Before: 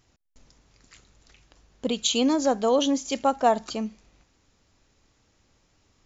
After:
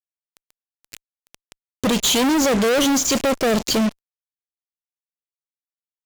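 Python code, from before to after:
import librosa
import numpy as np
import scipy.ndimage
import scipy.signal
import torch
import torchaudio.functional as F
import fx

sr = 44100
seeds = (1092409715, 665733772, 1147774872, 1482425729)

y = scipy.signal.sosfilt(scipy.signal.cheby1(3, 1.0, [560.0, 2300.0], 'bandstop', fs=sr, output='sos'), x)
y = fx.fuzz(y, sr, gain_db=46.0, gate_db=-43.0)
y = y * librosa.db_to_amplitude(-3.0)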